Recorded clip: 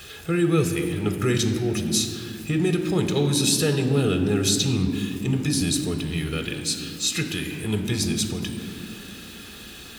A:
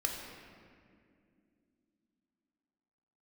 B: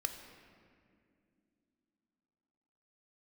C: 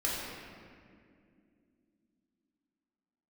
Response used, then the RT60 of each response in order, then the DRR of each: B; 2.4 s, not exponential, 2.3 s; 0.5, 6.0, -6.0 dB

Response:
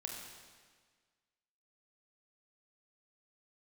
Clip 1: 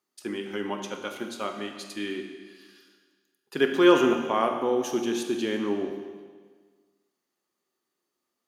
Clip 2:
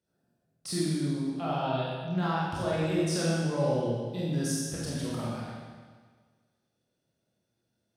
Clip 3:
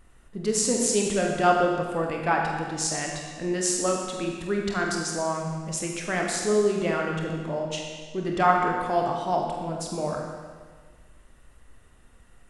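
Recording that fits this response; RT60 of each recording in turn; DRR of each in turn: 3; 1.6, 1.6, 1.6 s; 5.0, -7.5, 0.0 dB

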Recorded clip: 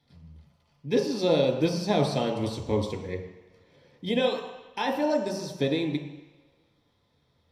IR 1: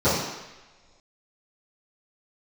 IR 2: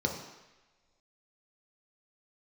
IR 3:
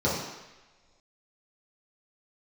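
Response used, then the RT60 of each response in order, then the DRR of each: 2; not exponential, not exponential, not exponential; -18.5, 0.5, -8.5 dB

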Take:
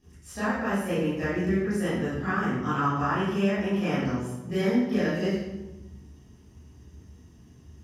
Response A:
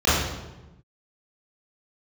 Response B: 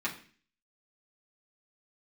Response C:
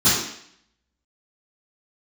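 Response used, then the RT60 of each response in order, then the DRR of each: A; 1.1, 0.45, 0.65 s; -13.0, -6.0, -19.5 dB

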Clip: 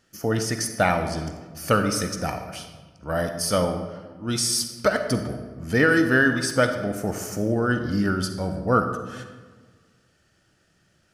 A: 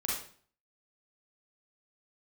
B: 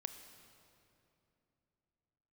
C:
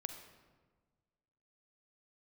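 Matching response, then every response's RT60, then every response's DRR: C; 0.50, 2.9, 1.5 s; -4.5, 8.0, 6.5 dB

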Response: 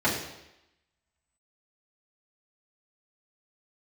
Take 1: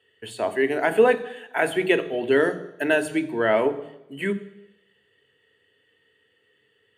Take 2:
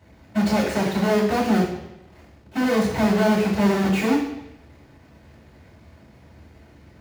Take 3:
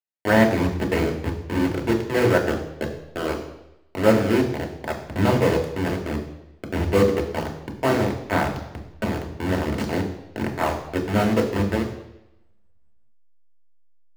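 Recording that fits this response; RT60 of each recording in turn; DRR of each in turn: 2; 0.90, 0.90, 0.90 s; 9.5, -8.0, 1.0 dB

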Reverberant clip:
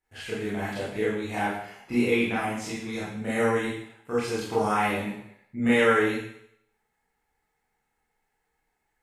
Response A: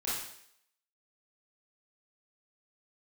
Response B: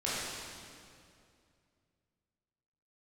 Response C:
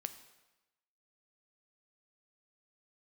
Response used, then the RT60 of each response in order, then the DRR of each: A; 0.70, 2.4, 1.0 s; -9.5, -9.5, 9.5 dB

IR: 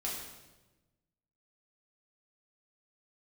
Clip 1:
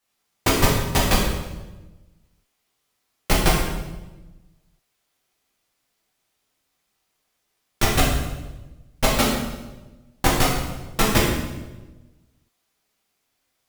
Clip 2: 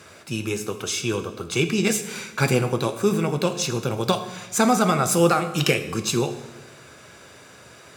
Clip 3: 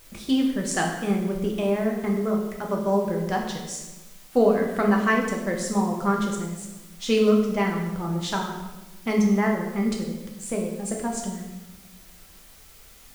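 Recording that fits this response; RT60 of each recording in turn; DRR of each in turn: 1; 1.1, 1.1, 1.1 s; -5.5, 8.0, -0.5 dB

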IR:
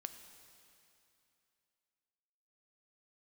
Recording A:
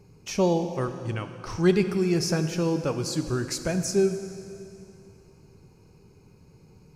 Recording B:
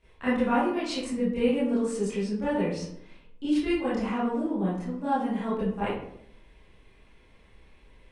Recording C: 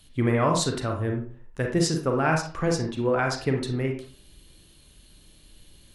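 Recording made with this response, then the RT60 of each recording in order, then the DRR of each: A; 2.8, 0.70, 0.45 s; 8.0, -13.0, 2.0 dB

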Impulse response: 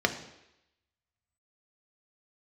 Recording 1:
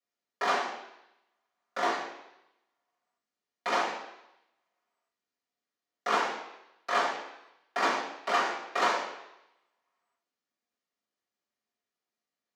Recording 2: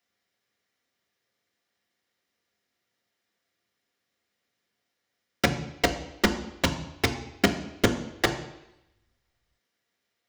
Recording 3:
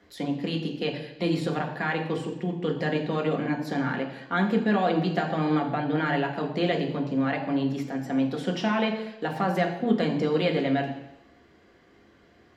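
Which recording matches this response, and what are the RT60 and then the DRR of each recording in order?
2; 0.85, 0.85, 0.85 s; -9.0, 5.5, 1.0 dB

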